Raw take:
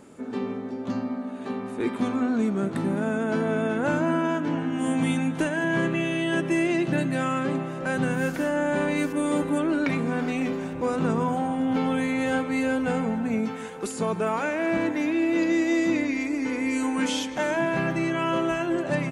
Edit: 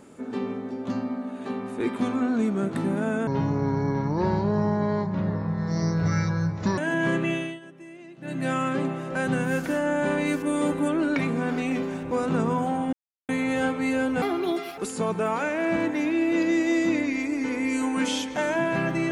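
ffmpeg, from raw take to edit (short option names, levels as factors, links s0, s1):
-filter_complex "[0:a]asplit=9[s0][s1][s2][s3][s4][s5][s6][s7][s8];[s0]atrim=end=3.274[s9];[s1]atrim=start=3.27:end=5.48,asetpts=PTS-STARTPTS,asetrate=27783,aresample=44100[s10];[s2]atrim=start=5.476:end=6.3,asetpts=PTS-STARTPTS,afade=t=out:st=0.554:d=0.27:silence=0.0891251[s11];[s3]atrim=start=6.3:end=6.91,asetpts=PTS-STARTPTS,volume=0.0891[s12];[s4]atrim=start=6.91:end=11.63,asetpts=PTS-STARTPTS,afade=t=in:d=0.27:silence=0.0891251,afade=t=out:st=4.716:d=0.004:c=hsin[s13];[s5]atrim=start=11.63:end=11.99,asetpts=PTS-STARTPTS,volume=0[s14];[s6]atrim=start=11.99:end=12.924,asetpts=PTS-STARTPTS,afade=t=in:d=0.004:c=hsin[s15];[s7]atrim=start=12.92:end=13.79,asetpts=PTS-STARTPTS,asetrate=68355,aresample=44100[s16];[s8]atrim=start=13.786[s17];[s9][s10]acrossfade=d=0.004:c1=hsin:c2=hsin[s18];[s11][s12][s13][s14][s15]concat=n=5:v=0:a=1[s19];[s18][s19]acrossfade=d=0.004:c1=hsin:c2=hsin[s20];[s20][s16]acrossfade=d=0.004:c1=hsin:c2=hsin[s21];[s21][s17]acrossfade=d=0.004:c1=hsin:c2=hsin"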